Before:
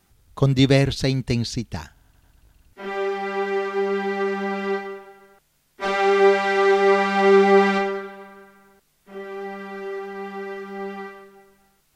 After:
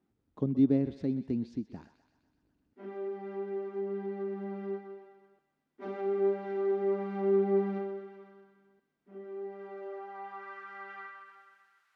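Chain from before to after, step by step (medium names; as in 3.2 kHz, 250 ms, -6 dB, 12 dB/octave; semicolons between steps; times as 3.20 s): thinning echo 126 ms, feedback 64%, high-pass 690 Hz, level -13 dB; band-pass sweep 270 Hz -> 1.4 kHz, 9.22–10.64 s; tape noise reduction on one side only encoder only; trim -5 dB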